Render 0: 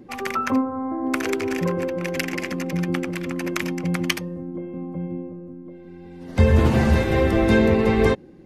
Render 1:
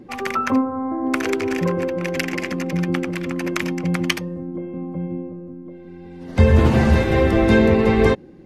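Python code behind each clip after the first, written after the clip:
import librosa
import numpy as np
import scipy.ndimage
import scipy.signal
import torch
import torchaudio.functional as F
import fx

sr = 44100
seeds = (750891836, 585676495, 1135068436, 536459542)

y = fx.high_shelf(x, sr, hz=9500.0, db=-7.0)
y = y * 10.0 ** (2.5 / 20.0)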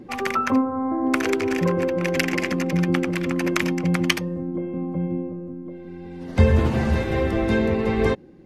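y = fx.rider(x, sr, range_db=4, speed_s=0.5)
y = y * 10.0 ** (-2.5 / 20.0)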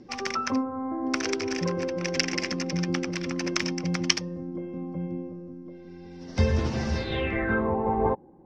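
y = fx.filter_sweep_lowpass(x, sr, from_hz=5500.0, to_hz=880.0, start_s=6.95, end_s=7.74, q=7.0)
y = y * 10.0 ** (-7.0 / 20.0)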